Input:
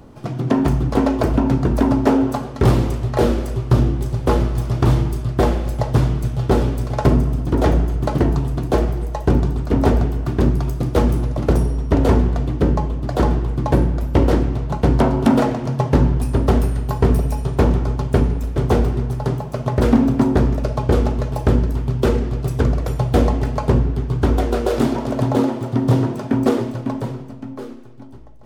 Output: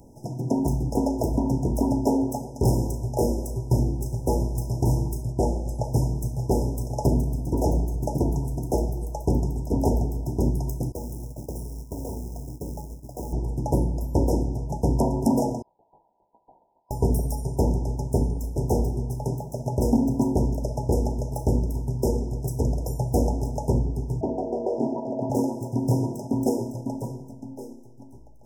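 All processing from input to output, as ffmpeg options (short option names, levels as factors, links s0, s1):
-filter_complex "[0:a]asettb=1/sr,asplit=3[s0][s1][s2];[s0]atrim=end=5.324[s3];[s1]atrim=start=5.32:end=5.84,asetpts=PTS-STARTPTS,afade=t=in:d=0.004:c=qsin,afade=t=out:st=0.516:d=0.004:c=qsin,lowpass=8600,equalizer=f=3000:t=o:w=1.1:g=-9.5[s4];[s2]atrim=start=5.836[s5];[s3][s4]acrossfade=d=0.004:c1=hsin:c2=qsin[s6];[s6][s5]acrossfade=d=0.004:c1=qsin:c2=hsin,asettb=1/sr,asplit=3[s7][s8][s9];[s7]atrim=end=10.924[s10];[s8]atrim=start=10.92:end=13.33,asetpts=PTS-STARTPTS,afade=t=in:d=0.004:c=qsin,afade=t=out:st=2.406:d=0.004:c=qsin,agate=range=0.0224:threshold=0.178:ratio=3:release=100:detection=peak,acompressor=threshold=0.0708:ratio=6:attack=3.2:release=140:knee=1:detection=peak,acrusher=bits=5:mode=log:mix=0:aa=0.000001[s11];[s9]atrim=start=13.326[s12];[s10][s11]acrossfade=d=0.004:c1=hsin:c2=qsin[s13];[s13][s12]acrossfade=d=0.004:c1=qsin:c2=hsin,asettb=1/sr,asplit=3[s14][s15][s16];[s14]atrim=end=15.624[s17];[s15]atrim=start=15.62:end=16.91,asetpts=PTS-STARTPTS,afade=t=in:d=0.004:c=qsin,afade=t=out:st=1.286:d=0.004:c=qsin,aemphasis=mode=reproduction:type=50fm,asplit=2[s18][s19];[s19]adelay=17,volume=0.355[s20];[s18][s20]amix=inputs=2:normalize=0,atrim=end_sample=56889,lowpass=f=3200:t=q:w=0.5098,lowpass=f=3200:t=q:w=0.6013,lowpass=f=3200:t=q:w=0.9,lowpass=f=3200:t=q:w=2.563,afreqshift=-3800[s21];[s16]atrim=start=16.906[s22];[s17][s21]acrossfade=d=0.004:c1=hsin:c2=qsin[s23];[s23][s22]acrossfade=d=0.004:c1=qsin:c2=hsin,asettb=1/sr,asplit=3[s24][s25][s26];[s24]atrim=end=24.214[s27];[s25]atrim=start=24.21:end=25.3,asetpts=PTS-STARTPTS,afade=t=in:d=0.004:c=qsin,afade=t=out:st=1.086:d=0.004:c=qsin,highpass=190,lowpass=2300,aeval=exprs='val(0)+0.0447*sin(2*PI*650*n/s)':c=same[s28];[s26]atrim=start=25.296[s29];[s27][s28]acrossfade=d=0.004:c1=hsin:c2=qsin[s30];[s30][s29]acrossfade=d=0.004:c1=qsin:c2=hsin,highshelf=f=4400:g=11,afftfilt=real='re*(1-between(b*sr/4096,990,5000))':imag='im*(1-between(b*sr/4096,990,5000))':win_size=4096:overlap=0.75,volume=0.447"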